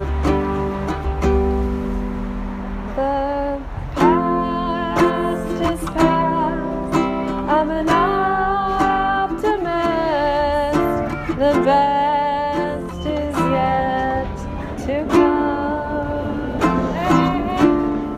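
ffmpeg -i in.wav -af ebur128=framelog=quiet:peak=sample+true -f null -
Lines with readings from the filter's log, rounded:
Integrated loudness:
  I:         -19.3 LUFS
  Threshold: -29.2 LUFS
Loudness range:
  LRA:         3.0 LU
  Threshold: -39.2 LUFS
  LRA low:   -21.1 LUFS
  LRA high:  -18.1 LUFS
Sample peak:
  Peak:       -3.8 dBFS
True peak:
  Peak:       -3.8 dBFS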